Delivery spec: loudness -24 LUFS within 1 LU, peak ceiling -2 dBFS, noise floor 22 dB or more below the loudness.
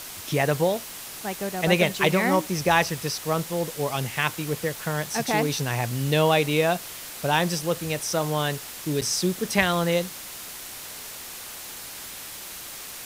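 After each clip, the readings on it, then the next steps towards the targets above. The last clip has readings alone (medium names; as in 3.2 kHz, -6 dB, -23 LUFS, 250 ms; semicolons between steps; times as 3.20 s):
dropouts 1; longest dropout 6.5 ms; noise floor -39 dBFS; noise floor target -47 dBFS; loudness -25.0 LUFS; peak level -5.5 dBFS; loudness target -24.0 LUFS
-> interpolate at 9.01 s, 6.5 ms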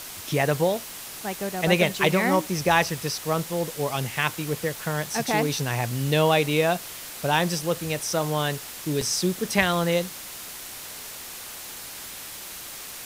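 dropouts 0; noise floor -39 dBFS; noise floor target -47 dBFS
-> noise reduction 8 dB, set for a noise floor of -39 dBFS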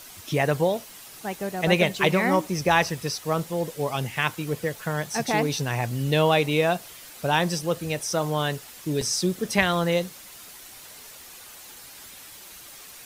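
noise floor -45 dBFS; noise floor target -47 dBFS
-> noise reduction 6 dB, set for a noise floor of -45 dBFS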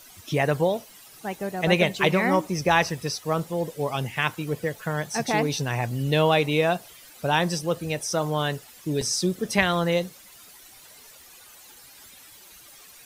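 noise floor -49 dBFS; loudness -25.0 LUFS; peak level -5.5 dBFS; loudness target -24.0 LUFS
-> trim +1 dB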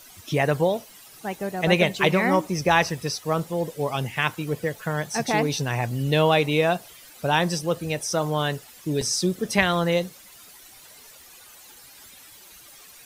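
loudness -24.0 LUFS; peak level -4.5 dBFS; noise floor -48 dBFS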